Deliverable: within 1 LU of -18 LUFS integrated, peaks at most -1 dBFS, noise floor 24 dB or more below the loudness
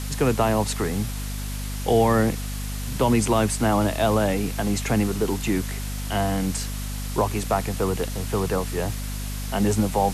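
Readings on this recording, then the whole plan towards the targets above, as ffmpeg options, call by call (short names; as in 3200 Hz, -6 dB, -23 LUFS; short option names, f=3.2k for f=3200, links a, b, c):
hum 50 Hz; harmonics up to 250 Hz; hum level -28 dBFS; noise floor -30 dBFS; noise floor target -48 dBFS; loudness -24.0 LUFS; peak -8.5 dBFS; loudness target -18.0 LUFS
-> -af "bandreject=f=50:t=h:w=4,bandreject=f=100:t=h:w=4,bandreject=f=150:t=h:w=4,bandreject=f=200:t=h:w=4,bandreject=f=250:t=h:w=4"
-af "afftdn=nr=18:nf=-30"
-af "volume=6dB"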